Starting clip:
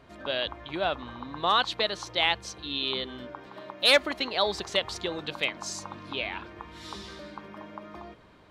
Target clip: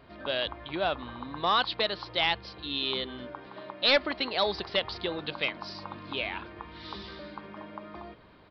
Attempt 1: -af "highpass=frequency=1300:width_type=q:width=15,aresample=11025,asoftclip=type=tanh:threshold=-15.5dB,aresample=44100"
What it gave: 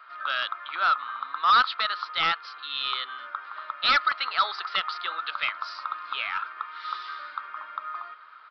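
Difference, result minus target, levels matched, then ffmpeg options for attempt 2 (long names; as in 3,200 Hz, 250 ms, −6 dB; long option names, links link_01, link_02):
1,000 Hz band +5.5 dB
-af "aresample=11025,asoftclip=type=tanh:threshold=-15.5dB,aresample=44100"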